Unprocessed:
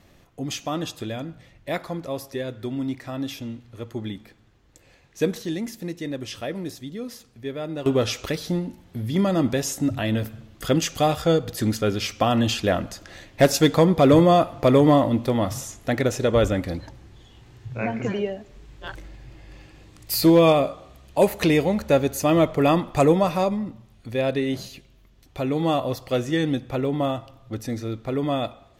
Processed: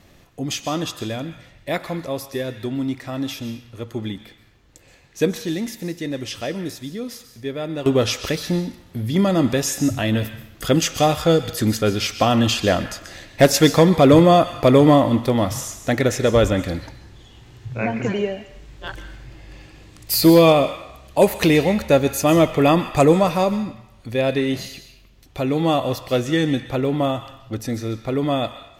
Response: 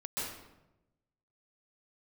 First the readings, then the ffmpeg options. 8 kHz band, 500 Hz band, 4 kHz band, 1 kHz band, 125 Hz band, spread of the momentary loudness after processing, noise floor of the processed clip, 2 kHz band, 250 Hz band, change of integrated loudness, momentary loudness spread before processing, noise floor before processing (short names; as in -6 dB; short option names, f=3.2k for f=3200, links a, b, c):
+5.5 dB, +3.5 dB, +5.0 dB, +3.5 dB, +3.5 dB, 17 LU, -50 dBFS, +4.5 dB, +3.5 dB, +3.5 dB, 18 LU, -55 dBFS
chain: -filter_complex "[0:a]asplit=2[a][b];[b]highpass=1.5k[c];[1:a]atrim=start_sample=2205[d];[c][d]afir=irnorm=-1:irlink=0,volume=-9.5dB[e];[a][e]amix=inputs=2:normalize=0,volume=3.5dB"